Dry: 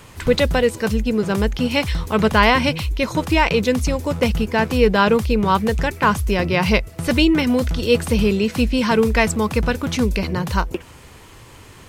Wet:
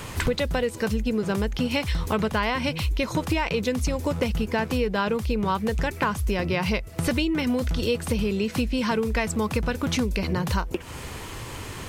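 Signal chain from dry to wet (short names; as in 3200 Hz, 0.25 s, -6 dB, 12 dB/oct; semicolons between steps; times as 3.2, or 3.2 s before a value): compressor 8:1, threshold -29 dBFS, peak gain reduction 19 dB; gain +7 dB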